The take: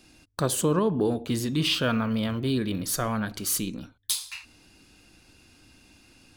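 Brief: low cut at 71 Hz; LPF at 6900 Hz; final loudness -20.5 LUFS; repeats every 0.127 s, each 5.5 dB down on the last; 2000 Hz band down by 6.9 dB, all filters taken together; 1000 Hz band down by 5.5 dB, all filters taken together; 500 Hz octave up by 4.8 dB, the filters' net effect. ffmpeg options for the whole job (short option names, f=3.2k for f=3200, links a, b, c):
-af "highpass=71,lowpass=6.9k,equalizer=f=500:t=o:g=7.5,equalizer=f=1k:t=o:g=-7.5,equalizer=f=2k:t=o:g=-8,aecho=1:1:127|254|381|508|635|762|889:0.531|0.281|0.149|0.079|0.0419|0.0222|0.0118,volume=4dB"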